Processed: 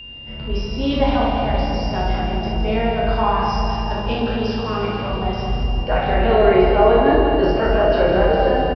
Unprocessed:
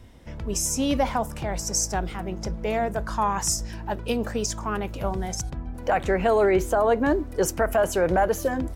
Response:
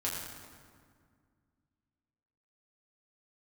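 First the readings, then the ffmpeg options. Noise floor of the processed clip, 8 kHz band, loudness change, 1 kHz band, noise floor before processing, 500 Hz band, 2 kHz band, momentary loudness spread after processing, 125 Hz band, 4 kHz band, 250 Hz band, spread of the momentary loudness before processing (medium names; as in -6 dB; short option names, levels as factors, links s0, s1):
-30 dBFS, under -20 dB, +6.5 dB, +7.0 dB, -37 dBFS, +7.0 dB, +5.5 dB, 9 LU, +9.0 dB, +7.0 dB, +6.5 dB, 11 LU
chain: -filter_complex "[0:a]aresample=11025,aresample=44100[s0];[1:a]atrim=start_sample=2205,asetrate=22491,aresample=44100[s1];[s0][s1]afir=irnorm=-1:irlink=0,aeval=exprs='val(0)+0.0282*sin(2*PI*2800*n/s)':c=same,volume=0.668"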